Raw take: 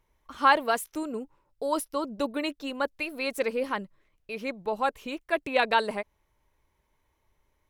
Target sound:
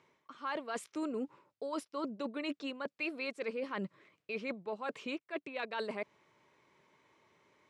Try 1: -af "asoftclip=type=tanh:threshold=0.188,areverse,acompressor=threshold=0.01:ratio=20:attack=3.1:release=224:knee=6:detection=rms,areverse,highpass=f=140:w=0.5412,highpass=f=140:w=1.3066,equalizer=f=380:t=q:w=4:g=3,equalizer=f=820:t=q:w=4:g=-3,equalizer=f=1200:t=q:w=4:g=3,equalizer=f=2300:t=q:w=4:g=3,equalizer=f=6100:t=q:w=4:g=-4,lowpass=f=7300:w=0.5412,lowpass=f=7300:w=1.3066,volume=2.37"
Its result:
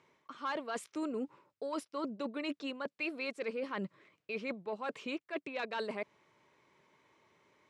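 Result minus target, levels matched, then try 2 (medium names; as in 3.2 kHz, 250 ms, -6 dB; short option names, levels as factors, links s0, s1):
saturation: distortion +15 dB
-af "asoftclip=type=tanh:threshold=0.562,areverse,acompressor=threshold=0.01:ratio=20:attack=3.1:release=224:knee=6:detection=rms,areverse,highpass=f=140:w=0.5412,highpass=f=140:w=1.3066,equalizer=f=380:t=q:w=4:g=3,equalizer=f=820:t=q:w=4:g=-3,equalizer=f=1200:t=q:w=4:g=3,equalizer=f=2300:t=q:w=4:g=3,equalizer=f=6100:t=q:w=4:g=-4,lowpass=f=7300:w=0.5412,lowpass=f=7300:w=1.3066,volume=2.37"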